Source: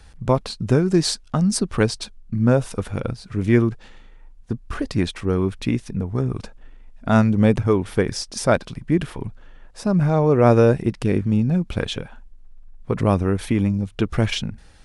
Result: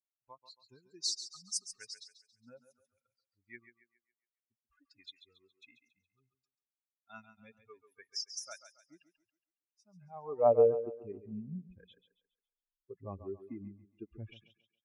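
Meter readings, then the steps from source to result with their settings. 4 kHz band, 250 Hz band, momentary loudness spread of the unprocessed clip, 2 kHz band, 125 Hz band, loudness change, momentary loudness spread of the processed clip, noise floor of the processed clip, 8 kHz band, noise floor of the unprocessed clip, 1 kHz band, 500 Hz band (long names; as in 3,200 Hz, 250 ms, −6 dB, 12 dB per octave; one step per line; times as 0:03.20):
−13.0 dB, −29.5 dB, 12 LU, −27.0 dB, −31.5 dB, −13.5 dB, 26 LU, below −85 dBFS, −11.0 dB, −46 dBFS, −15.5 dB, −13.0 dB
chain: spectral dynamics exaggerated over time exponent 3
band-pass filter sweep 5,800 Hz → 390 Hz, 0:09.86–0:10.59
feedback echo with a high-pass in the loop 138 ms, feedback 38%, high-pass 220 Hz, level −11 dB
level −2 dB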